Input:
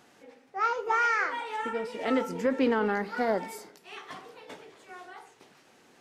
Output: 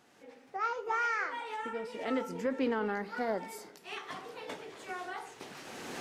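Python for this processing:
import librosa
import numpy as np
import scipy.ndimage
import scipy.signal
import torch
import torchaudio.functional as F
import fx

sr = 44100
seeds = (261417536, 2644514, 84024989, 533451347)

y = fx.recorder_agc(x, sr, target_db=-24.5, rise_db_per_s=17.0, max_gain_db=30)
y = y * 10.0 ** (-6.0 / 20.0)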